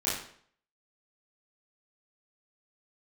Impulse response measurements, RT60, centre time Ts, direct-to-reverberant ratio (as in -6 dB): 0.60 s, 50 ms, -9.5 dB